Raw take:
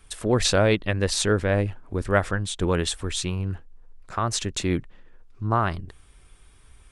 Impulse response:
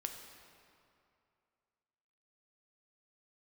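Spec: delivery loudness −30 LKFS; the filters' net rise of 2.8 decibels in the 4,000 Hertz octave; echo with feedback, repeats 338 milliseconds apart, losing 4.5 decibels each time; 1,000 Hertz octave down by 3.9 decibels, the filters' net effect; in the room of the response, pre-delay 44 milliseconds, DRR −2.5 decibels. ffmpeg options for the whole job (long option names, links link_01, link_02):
-filter_complex "[0:a]equalizer=frequency=1000:width_type=o:gain=-5.5,equalizer=frequency=4000:width_type=o:gain=3.5,aecho=1:1:338|676|1014|1352|1690|2028|2366|2704|3042:0.596|0.357|0.214|0.129|0.0772|0.0463|0.0278|0.0167|0.01,asplit=2[link_01][link_02];[1:a]atrim=start_sample=2205,adelay=44[link_03];[link_02][link_03]afir=irnorm=-1:irlink=0,volume=3.5dB[link_04];[link_01][link_04]amix=inputs=2:normalize=0,volume=-10.5dB"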